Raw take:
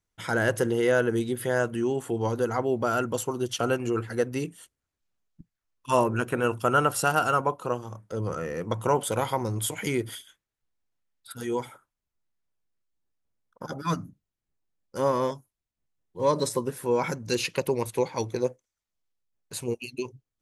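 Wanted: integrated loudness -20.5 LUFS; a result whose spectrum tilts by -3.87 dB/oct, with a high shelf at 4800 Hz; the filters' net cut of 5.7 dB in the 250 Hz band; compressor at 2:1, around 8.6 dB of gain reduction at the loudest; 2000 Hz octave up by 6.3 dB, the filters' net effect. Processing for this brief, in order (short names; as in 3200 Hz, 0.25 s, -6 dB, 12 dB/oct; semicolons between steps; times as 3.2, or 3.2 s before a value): bell 250 Hz -8.5 dB; bell 2000 Hz +8 dB; high shelf 4800 Hz +9 dB; compressor 2:1, threshold -31 dBFS; gain +11.5 dB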